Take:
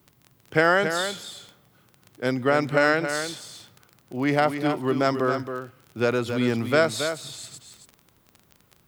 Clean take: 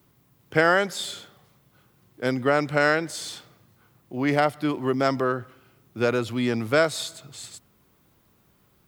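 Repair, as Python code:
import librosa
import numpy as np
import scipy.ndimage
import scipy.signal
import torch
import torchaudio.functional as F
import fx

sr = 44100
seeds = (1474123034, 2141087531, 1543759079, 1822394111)

y = fx.fix_declick_ar(x, sr, threshold=6.5)
y = fx.fix_echo_inverse(y, sr, delay_ms=274, level_db=-8.0)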